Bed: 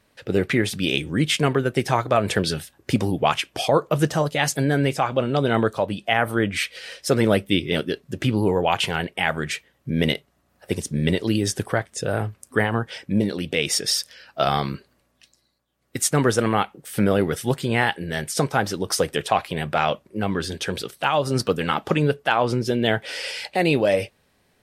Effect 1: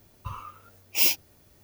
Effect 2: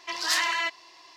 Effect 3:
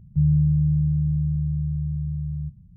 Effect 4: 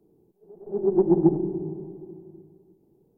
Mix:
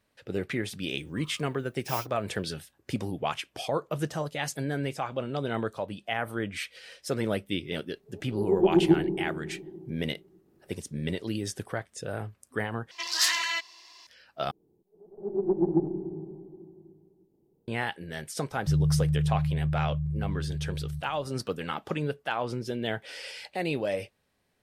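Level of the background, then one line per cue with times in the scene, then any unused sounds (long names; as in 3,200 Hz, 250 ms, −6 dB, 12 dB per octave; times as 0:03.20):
bed −10.5 dB
0:00.91: mix in 1 −16.5 dB
0:07.65: mix in 4 −2 dB
0:12.91: overwrite with 2 −8 dB + high-shelf EQ 2,100 Hz +12 dB
0:14.51: overwrite with 4 −6 dB
0:18.51: mix in 3 −5.5 dB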